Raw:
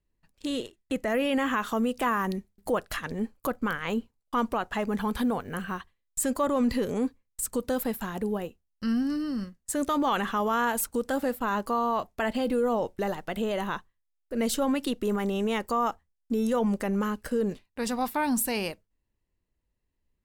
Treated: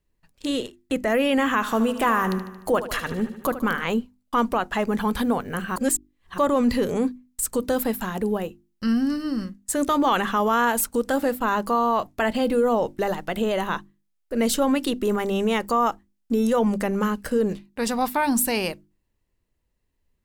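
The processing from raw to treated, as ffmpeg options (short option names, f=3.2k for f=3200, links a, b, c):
-filter_complex "[0:a]asettb=1/sr,asplit=3[a][b][c];[a]atrim=end=1.534[d];[b]atrim=start=1.53:end=3.84,asetpts=PTS-STARTPTS,afade=t=in:d=0.004:c=qsin,afade=t=out:st=2.306:d=0.004:c=qsin,aecho=1:1:75|150|225|300|375|450|525:0.251|0.148|0.0874|0.0516|0.0304|0.018|0.0106,atrim=end_sample=101871[e];[c]atrim=start=3.836[f];[d][e]acrossfade=d=0.004:c1=hsin:c2=qsin[g];[g][f]acrossfade=d=0.004:c1=qsin:c2=hsin,asplit=3[h][i][j];[h]atrim=end=5.762[k];[i]atrim=start=5.758:end=6.382,asetpts=PTS-STARTPTS,areverse[l];[j]atrim=start=6.378[m];[k][l]acrossfade=d=0.004:c1=hsin:c2=hsin[n];[n][m]acrossfade=d=0.004:c1=hsin:c2=hsin,bandreject=f=50:t=h:w=6,bandreject=f=100:t=h:w=6,bandreject=f=150:t=h:w=6,bandreject=f=200:t=h:w=6,bandreject=f=250:t=h:w=6,bandreject=f=300:t=h:w=6,bandreject=f=350:t=h:w=6,volume=5.5dB"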